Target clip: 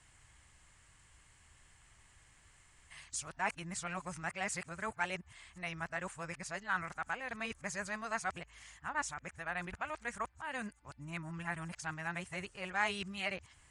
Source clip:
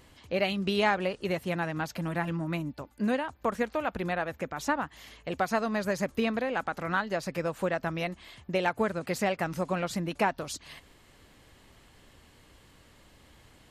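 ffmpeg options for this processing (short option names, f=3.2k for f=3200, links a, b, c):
-af "areverse,aresample=22050,aresample=44100,equalizer=f=250:t=o:w=1:g=-12,equalizer=f=500:t=o:w=1:g=-11,equalizer=f=2k:t=o:w=1:g=3,equalizer=f=4k:t=o:w=1:g=-8,equalizer=f=8k:t=o:w=1:g=9,volume=-5dB"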